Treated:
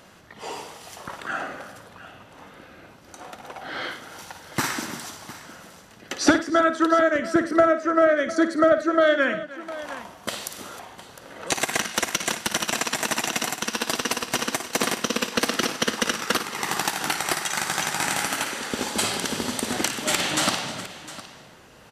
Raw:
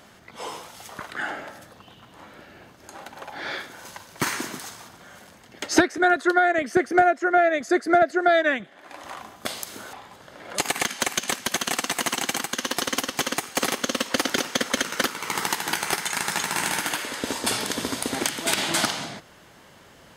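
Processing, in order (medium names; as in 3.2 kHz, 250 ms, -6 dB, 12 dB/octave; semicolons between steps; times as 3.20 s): multi-tap echo 51/90/287/651 ms -11/-18.5/-18/-16 dB; tape speed -8%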